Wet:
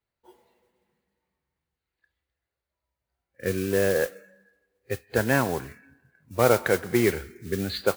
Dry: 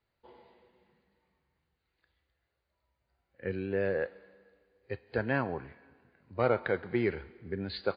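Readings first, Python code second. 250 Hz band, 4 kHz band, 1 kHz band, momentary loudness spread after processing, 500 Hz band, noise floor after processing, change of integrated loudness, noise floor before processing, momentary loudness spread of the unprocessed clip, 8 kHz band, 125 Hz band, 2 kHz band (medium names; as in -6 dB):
+7.5 dB, +10.5 dB, +7.5 dB, 14 LU, +7.5 dB, under -85 dBFS, +8.0 dB, -83 dBFS, 14 LU, no reading, +7.5 dB, +7.5 dB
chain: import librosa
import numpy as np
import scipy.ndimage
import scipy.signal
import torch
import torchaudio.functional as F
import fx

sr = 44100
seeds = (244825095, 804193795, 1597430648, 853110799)

y = fx.mod_noise(x, sr, seeds[0], snr_db=14)
y = fx.noise_reduce_blind(y, sr, reduce_db=13)
y = y * librosa.db_to_amplitude(7.5)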